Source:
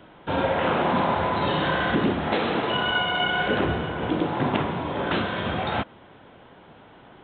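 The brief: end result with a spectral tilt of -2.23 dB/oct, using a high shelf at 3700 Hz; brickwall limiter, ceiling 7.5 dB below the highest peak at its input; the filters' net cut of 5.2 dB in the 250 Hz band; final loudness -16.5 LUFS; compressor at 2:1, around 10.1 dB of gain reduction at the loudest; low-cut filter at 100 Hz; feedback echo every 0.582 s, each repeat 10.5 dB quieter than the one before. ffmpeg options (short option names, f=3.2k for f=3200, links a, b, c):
-af "highpass=100,equalizer=f=250:t=o:g=-7,highshelf=f=3.7k:g=4,acompressor=threshold=-39dB:ratio=2,alimiter=level_in=3.5dB:limit=-24dB:level=0:latency=1,volume=-3.5dB,aecho=1:1:582|1164|1746:0.299|0.0896|0.0269,volume=19.5dB"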